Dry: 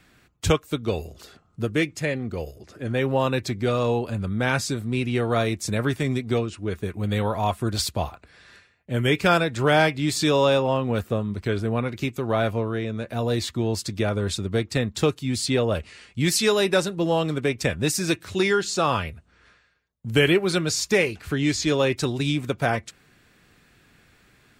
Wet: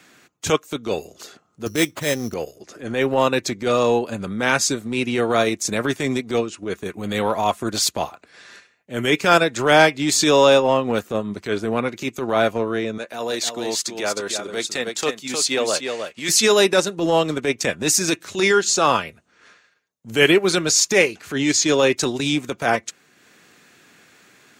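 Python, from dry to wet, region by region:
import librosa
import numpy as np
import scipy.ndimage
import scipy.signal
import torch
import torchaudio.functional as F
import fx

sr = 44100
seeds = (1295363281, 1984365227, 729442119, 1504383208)

y = fx.chain(x, sr, fx.peak_eq(hz=85.0, db=10.5, octaves=1.0),
    fx.sample_hold(seeds[0], rate_hz=5700.0, jitter_pct=0), at=(1.66, 2.34))
y = fx.chain(y, sr, fx.highpass(hz=620.0, slope=6),
    fx.echo_single(ms=310, db=-6.0), at=(12.98, 16.29))
y = scipy.signal.sosfilt(scipy.signal.butter(2, 230.0, 'highpass', fs=sr, output='sos'), y)
y = fx.peak_eq(y, sr, hz=6500.0, db=7.5, octaves=0.37)
y = fx.transient(y, sr, attack_db=-9, sustain_db=-5)
y = y * 10.0 ** (7.0 / 20.0)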